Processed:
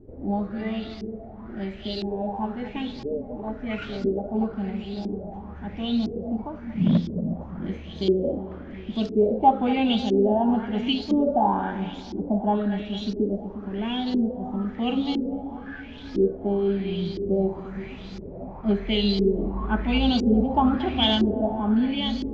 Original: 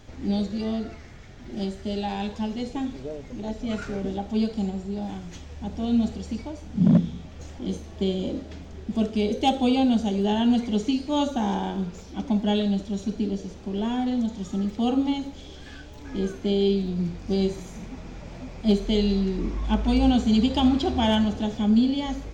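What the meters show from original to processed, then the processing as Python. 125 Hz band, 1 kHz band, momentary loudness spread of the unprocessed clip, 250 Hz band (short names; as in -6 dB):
-1.5 dB, +4.0 dB, 17 LU, -1.0 dB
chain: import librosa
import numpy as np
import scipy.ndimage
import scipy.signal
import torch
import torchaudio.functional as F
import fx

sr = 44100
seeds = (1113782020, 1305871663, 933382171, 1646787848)

y = fx.echo_split(x, sr, split_hz=380.0, low_ms=356, high_ms=230, feedback_pct=52, wet_db=-9.5)
y = fx.filter_lfo_lowpass(y, sr, shape='saw_up', hz=0.99, low_hz=340.0, high_hz=5200.0, q=4.8)
y = F.gain(torch.from_numpy(y), -2.5).numpy()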